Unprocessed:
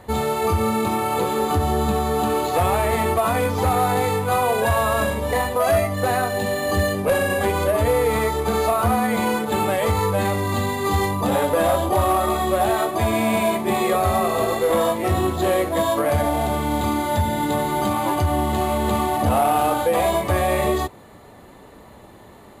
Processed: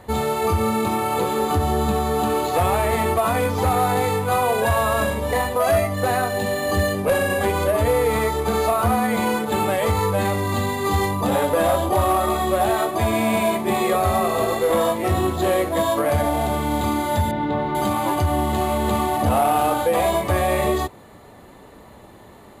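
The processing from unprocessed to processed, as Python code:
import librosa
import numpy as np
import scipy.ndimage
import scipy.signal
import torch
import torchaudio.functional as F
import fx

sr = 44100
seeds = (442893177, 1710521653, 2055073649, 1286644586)

y = fx.air_absorb(x, sr, metres=300.0, at=(17.31, 17.75))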